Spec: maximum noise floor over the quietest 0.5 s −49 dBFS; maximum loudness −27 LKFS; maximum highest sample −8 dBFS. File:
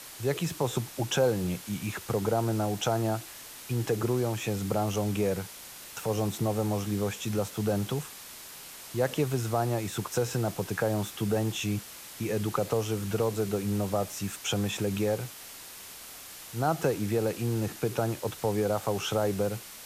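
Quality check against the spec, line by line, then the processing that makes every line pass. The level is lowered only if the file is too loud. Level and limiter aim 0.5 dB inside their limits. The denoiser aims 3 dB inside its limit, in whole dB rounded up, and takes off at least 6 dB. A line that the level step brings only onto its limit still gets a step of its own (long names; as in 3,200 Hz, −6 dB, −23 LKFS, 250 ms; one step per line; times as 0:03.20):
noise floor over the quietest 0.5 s −45 dBFS: out of spec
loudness −30.0 LKFS: in spec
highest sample −13.0 dBFS: in spec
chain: broadband denoise 7 dB, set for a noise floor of −45 dBFS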